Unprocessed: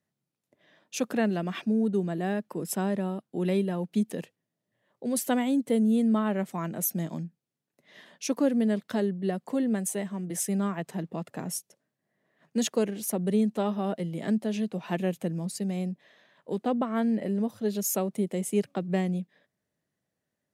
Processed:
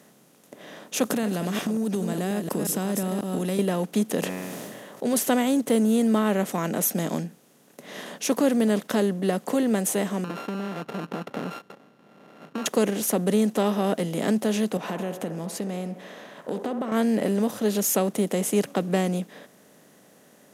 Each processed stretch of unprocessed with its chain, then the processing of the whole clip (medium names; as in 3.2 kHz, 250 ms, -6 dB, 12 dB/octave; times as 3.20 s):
1.05–3.59 s: chunks repeated in reverse 180 ms, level -10.5 dB + tone controls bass +10 dB, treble +11 dB + compression, threshold -30 dBFS
4.20–5.08 s: de-hum 91.94 Hz, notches 29 + decay stretcher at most 40 dB/s
10.24–12.66 s: sorted samples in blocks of 32 samples + compression 5:1, threshold -37 dBFS + distance through air 350 m
14.77–16.92 s: treble shelf 3.8 kHz -10 dB + compression 4:1, threshold -37 dBFS + feedback echo behind a band-pass 65 ms, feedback 50%, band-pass 780 Hz, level -10.5 dB
whole clip: spectral levelling over time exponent 0.6; bass shelf 91 Hz -10.5 dB; trim +2.5 dB